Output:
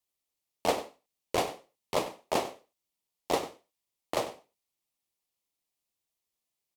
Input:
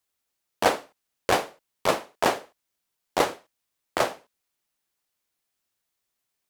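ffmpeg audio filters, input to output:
ffmpeg -i in.wav -filter_complex "[0:a]equalizer=frequency=1600:width_type=o:width=0.48:gain=-11.5,asplit=2[link_01][link_02];[link_02]adelay=93.29,volume=-14dB,highshelf=frequency=4000:gain=-2.1[link_03];[link_01][link_03]amix=inputs=2:normalize=0,asetrate=42336,aresample=44100,volume=-5.5dB" out.wav

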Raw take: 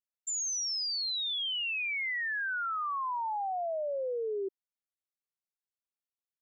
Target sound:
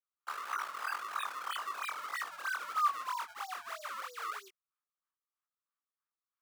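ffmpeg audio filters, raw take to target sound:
ffmpeg -i in.wav -af "acrusher=samples=32:mix=1:aa=0.000001:lfo=1:lforange=51.2:lforate=3.1,highpass=frequency=1200:width_type=q:width=6,flanger=delay=18:depth=6.3:speed=1.8,volume=-5.5dB" out.wav

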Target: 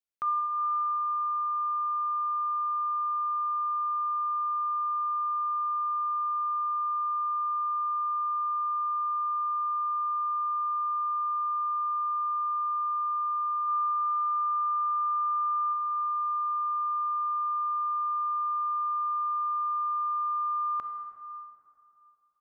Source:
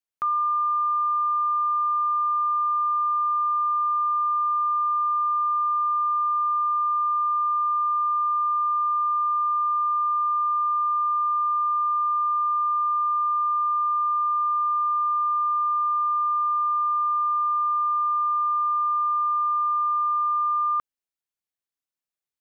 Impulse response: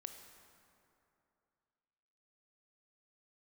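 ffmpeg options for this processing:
-filter_complex "[0:a]asplit=3[link_01][link_02][link_03];[link_01]afade=type=out:start_time=13.67:duration=0.02[link_04];[link_02]aecho=1:1:120|198|248.7|281.7|303.1:0.631|0.398|0.251|0.158|0.1,afade=type=in:start_time=13.67:duration=0.02,afade=type=out:start_time=15.72:duration=0.02[link_05];[link_03]afade=type=in:start_time=15.72:duration=0.02[link_06];[link_04][link_05][link_06]amix=inputs=3:normalize=0[link_07];[1:a]atrim=start_sample=2205[link_08];[link_07][link_08]afir=irnorm=-1:irlink=0"

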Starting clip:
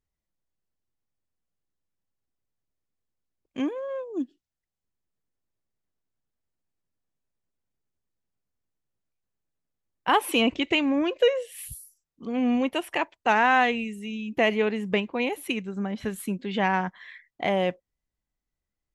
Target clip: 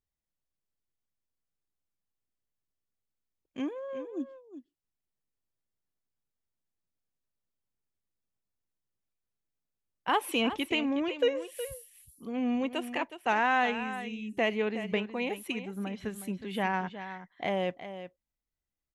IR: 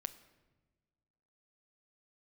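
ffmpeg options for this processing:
-af "aecho=1:1:367:0.266,volume=-6dB"

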